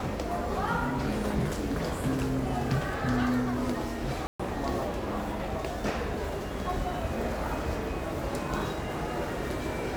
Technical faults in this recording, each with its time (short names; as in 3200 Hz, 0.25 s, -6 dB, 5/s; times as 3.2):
4.27–4.39 gap 0.125 s